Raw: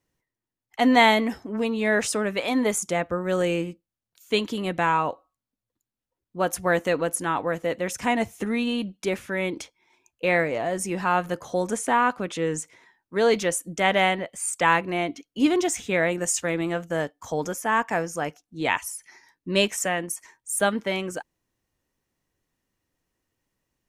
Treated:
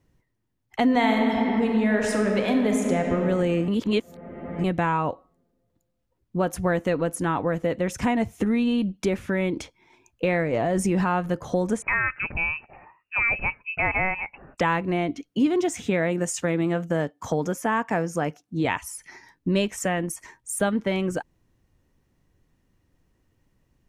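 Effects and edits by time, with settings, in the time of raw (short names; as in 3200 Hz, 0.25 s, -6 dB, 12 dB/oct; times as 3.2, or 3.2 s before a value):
0.83–3.14 reverb throw, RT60 2.6 s, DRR 2 dB
3.68–4.64 reverse
10.53–11.07 fast leveller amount 70%
11.82–14.58 inverted band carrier 2800 Hz
15.3–18.65 HPF 120 Hz
whole clip: low shelf 260 Hz +11.5 dB; compressor 2.5:1, threshold -30 dBFS; high shelf 4300 Hz -6.5 dB; gain +6 dB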